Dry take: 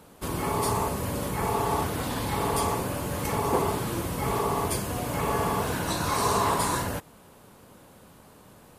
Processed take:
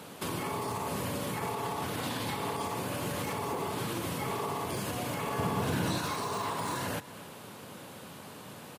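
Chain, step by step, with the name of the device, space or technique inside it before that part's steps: broadcast voice chain (HPF 98 Hz 24 dB/oct; de-esser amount 65%; compressor 4:1, threshold -37 dBFS, peak gain reduction 14.5 dB; bell 3100 Hz +5.5 dB 1.7 oct; limiter -30 dBFS, peak gain reduction 5.5 dB); 5.38–5.98 low shelf 340 Hz +9.5 dB; outdoor echo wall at 42 m, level -16 dB; gain +5 dB

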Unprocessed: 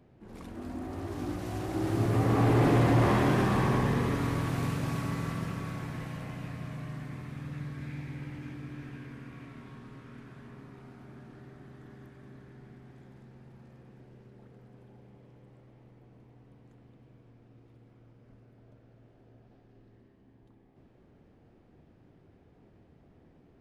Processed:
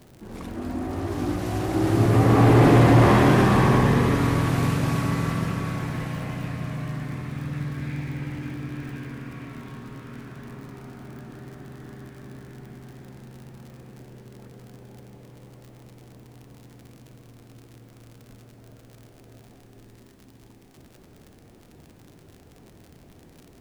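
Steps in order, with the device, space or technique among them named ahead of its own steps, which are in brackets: vinyl LP (crackle 71/s -46 dBFS; pink noise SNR 38 dB); gain +8.5 dB

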